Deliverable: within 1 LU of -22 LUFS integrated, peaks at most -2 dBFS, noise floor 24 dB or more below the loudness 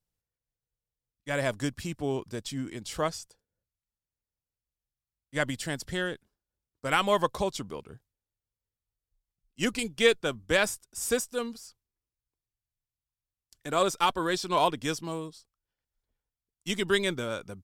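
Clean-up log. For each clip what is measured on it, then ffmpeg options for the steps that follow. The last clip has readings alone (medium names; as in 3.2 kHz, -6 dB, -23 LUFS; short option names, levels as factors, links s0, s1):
loudness -29.5 LUFS; peak level -8.5 dBFS; loudness target -22.0 LUFS
-> -af "volume=2.37,alimiter=limit=0.794:level=0:latency=1"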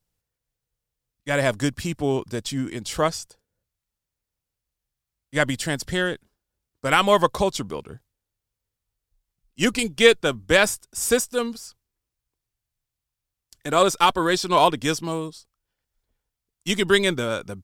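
loudness -22.0 LUFS; peak level -2.0 dBFS; noise floor -86 dBFS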